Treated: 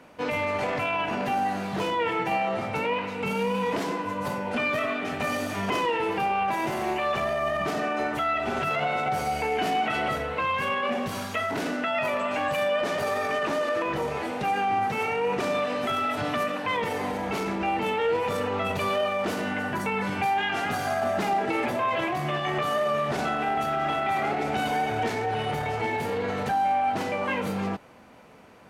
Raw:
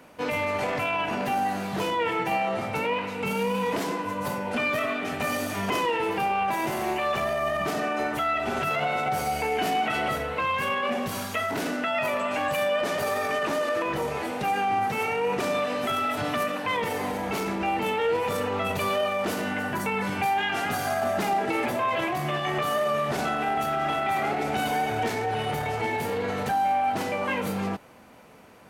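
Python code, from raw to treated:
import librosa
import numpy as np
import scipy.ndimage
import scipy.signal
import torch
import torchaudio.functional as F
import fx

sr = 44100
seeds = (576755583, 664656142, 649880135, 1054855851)

y = fx.high_shelf(x, sr, hz=10000.0, db=-11.5)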